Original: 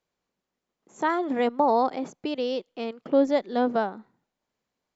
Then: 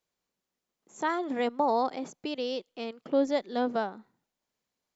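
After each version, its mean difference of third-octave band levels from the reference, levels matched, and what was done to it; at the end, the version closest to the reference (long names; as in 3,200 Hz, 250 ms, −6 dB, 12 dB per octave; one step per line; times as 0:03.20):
1.0 dB: high-shelf EQ 3,400 Hz +8 dB
level −5 dB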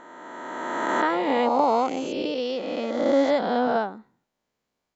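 6.0 dB: peak hold with a rise ahead of every peak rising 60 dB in 2.35 s
level −1.5 dB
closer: first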